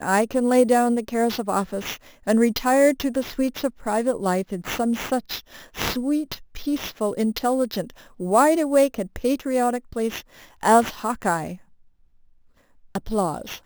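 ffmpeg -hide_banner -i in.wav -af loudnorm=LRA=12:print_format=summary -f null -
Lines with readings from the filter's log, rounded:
Input Integrated:    -22.8 LUFS
Input True Peak:      -3.7 dBTP
Input LRA:             5.8 LU
Input Threshold:     -33.5 LUFS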